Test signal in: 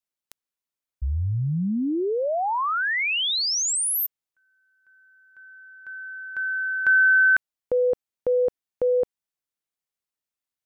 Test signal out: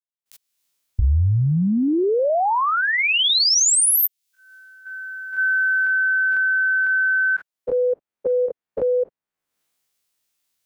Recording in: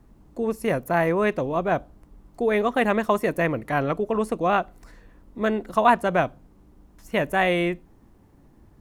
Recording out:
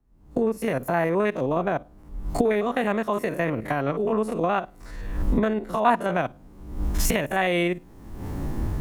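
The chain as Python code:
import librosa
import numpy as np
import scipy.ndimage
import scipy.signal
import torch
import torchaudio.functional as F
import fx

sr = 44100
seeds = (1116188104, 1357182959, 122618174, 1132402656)

y = fx.spec_steps(x, sr, hold_ms=50)
y = fx.recorder_agc(y, sr, target_db=-14.0, rise_db_per_s=47.0, max_gain_db=30)
y = fx.band_widen(y, sr, depth_pct=40)
y = y * librosa.db_to_amplitude(-2.0)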